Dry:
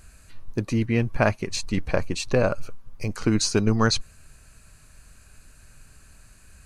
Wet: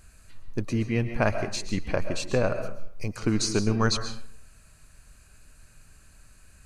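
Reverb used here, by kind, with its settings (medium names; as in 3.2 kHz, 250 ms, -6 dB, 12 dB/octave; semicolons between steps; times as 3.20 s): algorithmic reverb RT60 0.6 s, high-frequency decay 0.65×, pre-delay 90 ms, DRR 8.5 dB; trim -3.5 dB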